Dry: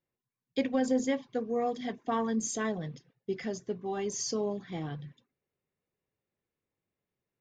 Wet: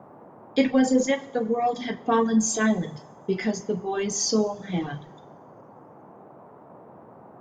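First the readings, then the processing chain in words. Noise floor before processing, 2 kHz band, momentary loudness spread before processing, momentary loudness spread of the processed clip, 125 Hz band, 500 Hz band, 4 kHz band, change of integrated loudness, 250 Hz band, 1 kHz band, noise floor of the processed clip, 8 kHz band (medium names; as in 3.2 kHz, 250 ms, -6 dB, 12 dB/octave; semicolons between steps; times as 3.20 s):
under -85 dBFS, +10.0 dB, 10 LU, 9 LU, +7.5 dB, +7.0 dB, +9.5 dB, +8.0 dB, +9.0 dB, +8.5 dB, -49 dBFS, +9.0 dB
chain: two-slope reverb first 0.72 s, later 2.4 s, from -18 dB, DRR 2 dB; reverb removal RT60 1.4 s; band noise 110–960 Hz -56 dBFS; trim +8 dB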